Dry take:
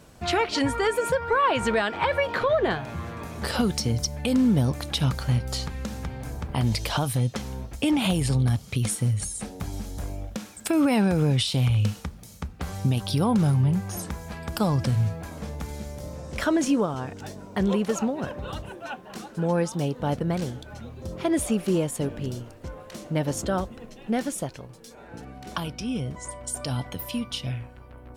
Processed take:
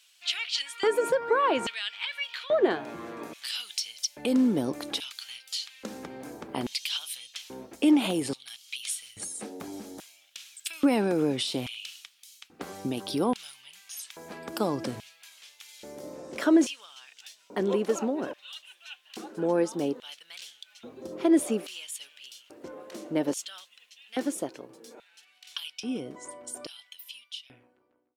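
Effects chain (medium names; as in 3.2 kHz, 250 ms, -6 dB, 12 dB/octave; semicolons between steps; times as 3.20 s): fade out at the end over 2.43 s; LFO high-pass square 0.6 Hz 320–3000 Hz; trim -4 dB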